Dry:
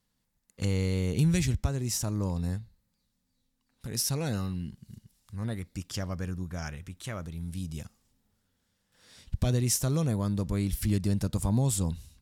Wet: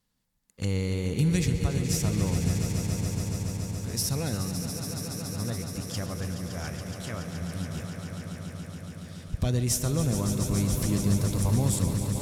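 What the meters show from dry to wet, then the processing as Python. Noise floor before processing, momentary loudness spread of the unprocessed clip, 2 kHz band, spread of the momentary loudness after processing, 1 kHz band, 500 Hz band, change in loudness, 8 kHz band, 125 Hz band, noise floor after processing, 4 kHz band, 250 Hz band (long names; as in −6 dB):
−77 dBFS, 13 LU, +3.0 dB, 12 LU, +2.5 dB, +2.5 dB, +1.5 dB, +2.5 dB, +2.5 dB, −46 dBFS, +3.0 dB, +2.5 dB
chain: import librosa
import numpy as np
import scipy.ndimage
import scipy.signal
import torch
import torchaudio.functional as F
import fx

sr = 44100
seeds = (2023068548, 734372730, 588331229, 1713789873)

y = fx.echo_swell(x, sr, ms=141, loudest=5, wet_db=-10)
y = fx.echo_warbled(y, sr, ms=122, feedback_pct=79, rate_hz=2.8, cents=59, wet_db=-17.5)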